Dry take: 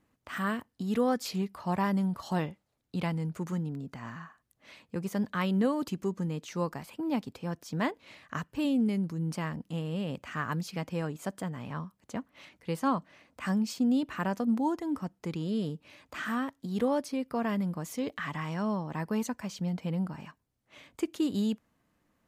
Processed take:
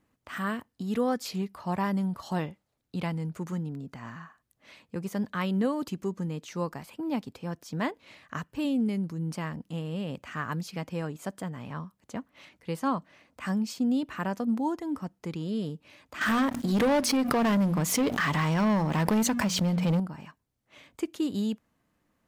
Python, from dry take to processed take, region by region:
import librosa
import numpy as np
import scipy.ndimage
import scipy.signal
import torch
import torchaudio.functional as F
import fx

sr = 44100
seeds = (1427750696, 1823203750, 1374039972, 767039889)

y = fx.chain(x, sr, fx.hum_notches(base_hz=60, count=4),
    fx.leveller(passes=3),
    fx.pre_swell(db_per_s=60.0), at=(16.21, 20.0))